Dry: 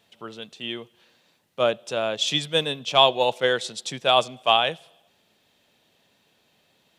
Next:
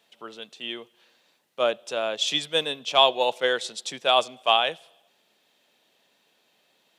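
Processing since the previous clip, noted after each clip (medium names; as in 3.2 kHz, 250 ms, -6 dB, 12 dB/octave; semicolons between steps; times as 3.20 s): Bessel high-pass 310 Hz, order 2; trim -1 dB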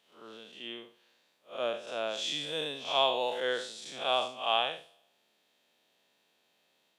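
spectral blur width 145 ms; trim -4.5 dB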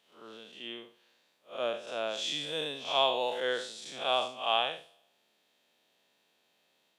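no audible change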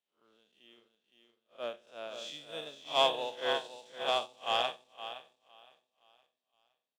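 feedback delay 515 ms, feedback 44%, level -5.5 dB; waveshaping leveller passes 1; upward expansion 2.5:1, over -35 dBFS; trim -1.5 dB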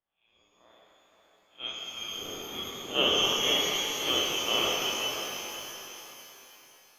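frequency inversion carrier 3.8 kHz; level-controlled noise filter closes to 2.9 kHz; pitch-shifted reverb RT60 3.4 s, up +12 st, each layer -8 dB, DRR -4 dB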